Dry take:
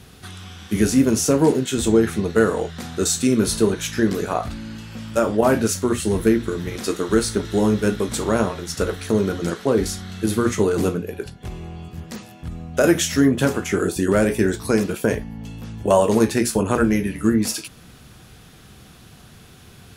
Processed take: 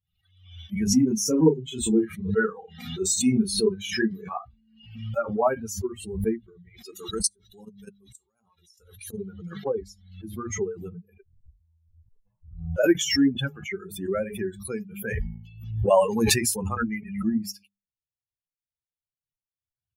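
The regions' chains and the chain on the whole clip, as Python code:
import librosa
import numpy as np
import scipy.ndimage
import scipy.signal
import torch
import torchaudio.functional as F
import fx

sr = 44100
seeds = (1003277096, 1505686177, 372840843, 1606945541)

y = fx.chain(x, sr, fx.doubler(ms=32.0, db=-3.5),
    fx.echo_single(ms=124, db=-23.5), at=(0.87, 4.86))
y = fx.chain(y, sr, fx.peak_eq(hz=9700.0, db=10.5, octaves=1.9),
    fx.level_steps(step_db=16), at=(6.94, 9.18))
y = fx.chain(y, sr, fx.lower_of_two(delay_ms=1.9),
    fx.lowpass(hz=1300.0, slope=12), at=(11.23, 12.46))
y = fx.chain(y, sr, fx.high_shelf(hz=2700.0, db=4.0),
    fx.sustainer(db_per_s=22.0), at=(15.03, 16.69))
y = fx.bin_expand(y, sr, power=3.0)
y = fx.hum_notches(y, sr, base_hz=50, count=4)
y = fx.pre_swell(y, sr, db_per_s=80.0)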